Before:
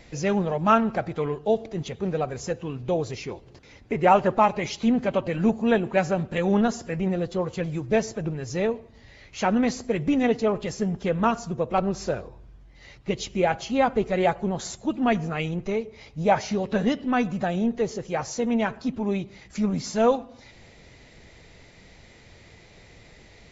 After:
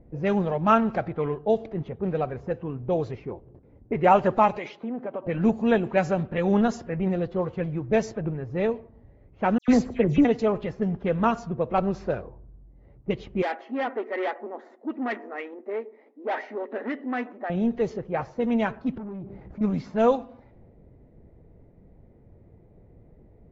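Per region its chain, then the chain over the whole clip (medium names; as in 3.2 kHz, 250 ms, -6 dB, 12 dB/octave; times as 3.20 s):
4.57–5.26 s: high-pass 310 Hz + compression 4:1, threshold -28 dBFS
9.58–10.25 s: bass shelf 490 Hz +6 dB + phase dispersion lows, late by 101 ms, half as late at 2.9 kHz
13.42–17.50 s: peaking EQ 1.9 kHz +15 dB 0.22 oct + valve stage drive 23 dB, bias 0.35 + brick-wall FIR high-pass 230 Hz
18.97–19.61 s: waveshaping leveller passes 3 + compression 12:1, threshold -34 dBFS
whole clip: level-controlled noise filter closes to 420 Hz, open at -18 dBFS; treble shelf 3.9 kHz -7 dB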